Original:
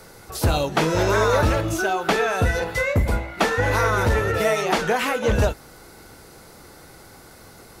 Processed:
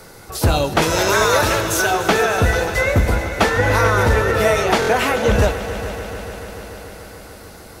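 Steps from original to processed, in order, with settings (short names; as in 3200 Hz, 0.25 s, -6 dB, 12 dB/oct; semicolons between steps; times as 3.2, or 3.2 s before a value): 0.82–1.91 tilt +2.5 dB/oct; multi-head echo 0.146 s, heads all three, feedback 71%, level -17 dB; stuck buffer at 4.8, samples 1024, times 3; gain +4 dB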